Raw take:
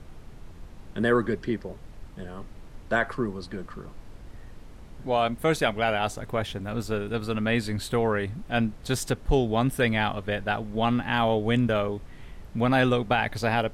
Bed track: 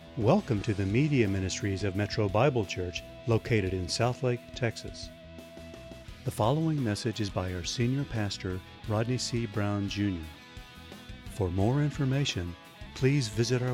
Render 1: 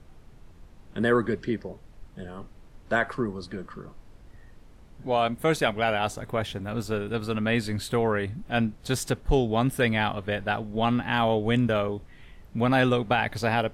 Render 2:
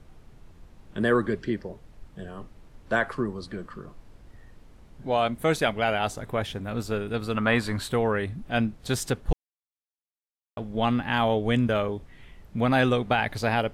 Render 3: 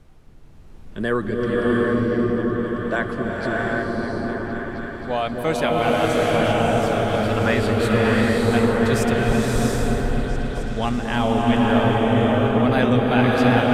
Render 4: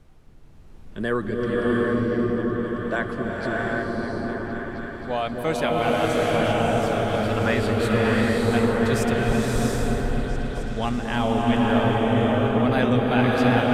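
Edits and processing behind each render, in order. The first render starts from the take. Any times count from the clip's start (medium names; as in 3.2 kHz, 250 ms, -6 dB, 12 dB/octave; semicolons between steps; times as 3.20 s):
noise print and reduce 6 dB
7.37–7.88 s: peaking EQ 1.1 kHz +11.5 dB 1.1 oct; 9.33–10.57 s: mute
delay with an opening low-pass 266 ms, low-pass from 400 Hz, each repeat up 1 oct, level 0 dB; swelling reverb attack 710 ms, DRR -3 dB
trim -2.5 dB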